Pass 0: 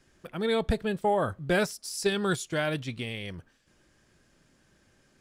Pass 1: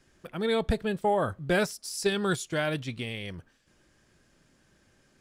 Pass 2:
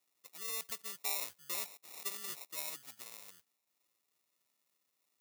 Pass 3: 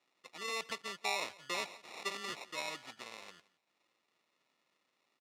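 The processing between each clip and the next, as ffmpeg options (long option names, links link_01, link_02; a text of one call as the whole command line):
ffmpeg -i in.wav -af anull out.wav
ffmpeg -i in.wav -af "acrusher=samples=28:mix=1:aa=0.000001,aderivative,volume=-2.5dB" out.wav
ffmpeg -i in.wav -af "highpass=160,lowpass=3400,aecho=1:1:173:0.0891,volume=9dB" out.wav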